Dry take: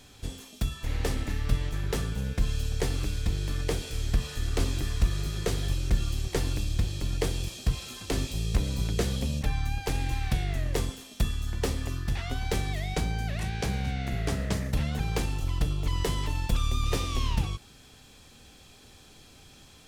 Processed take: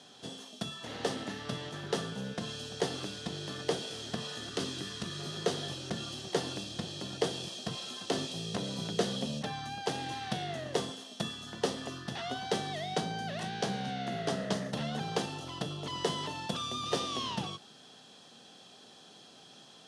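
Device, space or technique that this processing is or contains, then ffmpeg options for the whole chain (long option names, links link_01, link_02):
television speaker: -filter_complex "[0:a]highpass=frequency=170:width=0.5412,highpass=frequency=170:width=1.3066,equalizer=frequency=290:width_type=q:width=4:gain=-4,equalizer=frequency=680:width_type=q:width=4:gain=5,equalizer=frequency=2300:width_type=q:width=4:gain=-10,equalizer=frequency=3200:width_type=q:width=4:gain=4,equalizer=frequency=7500:width_type=q:width=4:gain=-7,lowpass=frequency=8900:width=0.5412,lowpass=frequency=8900:width=1.3066,asettb=1/sr,asplit=3[link_01][link_02][link_03];[link_01]atrim=end=4.494[link_04];[link_02]atrim=start=4.49:end=5.2,asetpts=PTS-STARTPTS,afade=type=in:duration=0.004:curve=qsin,afade=type=out:start_time=0.706:duration=0.004:curve=qsin,equalizer=frequency=720:width=1.4:gain=-8[link_05];[link_03]atrim=start=5.196[link_06];[link_04][link_05]acrossfade=duration=0.004:curve1=hsin:curve2=qsin[link_07];[link_07][link_06]acrossfade=duration=0.004:curve1=qsin:curve2=hsin"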